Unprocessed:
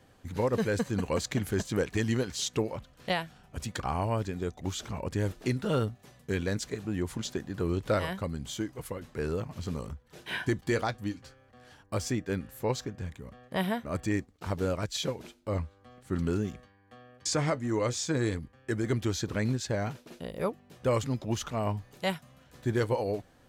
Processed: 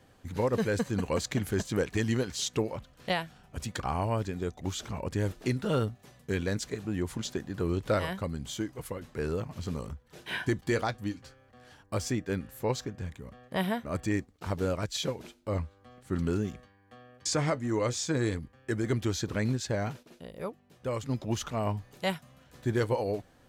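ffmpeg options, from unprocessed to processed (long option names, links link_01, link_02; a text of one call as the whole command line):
ffmpeg -i in.wav -filter_complex "[0:a]asplit=3[link_01][link_02][link_03];[link_01]atrim=end=20.032[link_04];[link_02]atrim=start=20.028:end=21.092,asetpts=PTS-STARTPTS,volume=-6dB[link_05];[link_03]atrim=start=21.088[link_06];[link_04][link_05]acrossfade=duration=0.004:curve1=hsin:curve2=hsin[link_07];[link_07][link_06]acrossfade=duration=0.004:curve1=hsin:curve2=hsin" out.wav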